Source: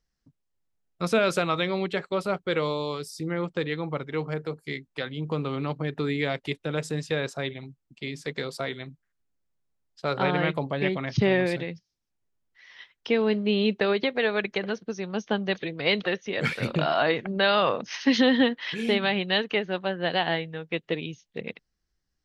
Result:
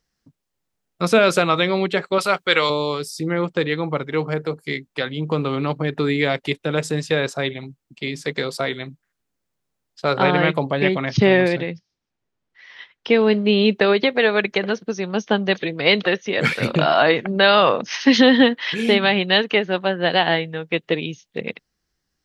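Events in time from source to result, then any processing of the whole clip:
2.18–2.7 tilt shelf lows -8.5 dB, about 700 Hz
11.48–13.1 air absorption 100 m
whole clip: low shelf 68 Hz -11.5 dB; gain +8 dB

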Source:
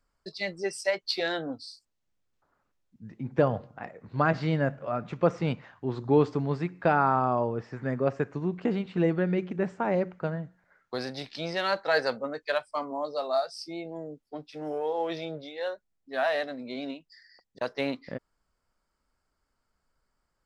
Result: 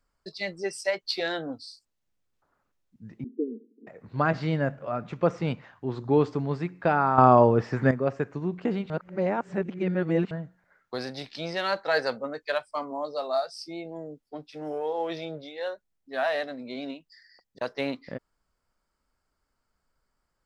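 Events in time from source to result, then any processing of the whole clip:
3.24–3.87 Chebyshev band-pass 220–450 Hz, order 5
7.18–7.91 gain +10 dB
8.9–10.31 reverse

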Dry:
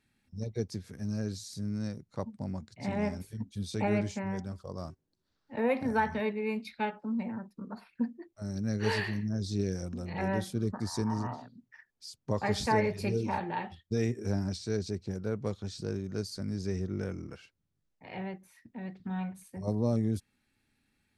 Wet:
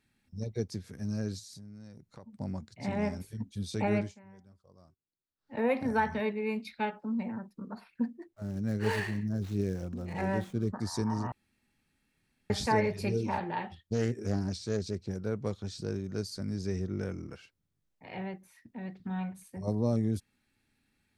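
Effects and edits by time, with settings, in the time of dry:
1.39–2.33 compressor 5:1, threshold -46 dBFS
3.98–5.54 dip -19.5 dB, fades 0.17 s
8.02–10.74 median filter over 9 samples
11.32–12.5 room tone
13.31–15.08 Doppler distortion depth 0.28 ms

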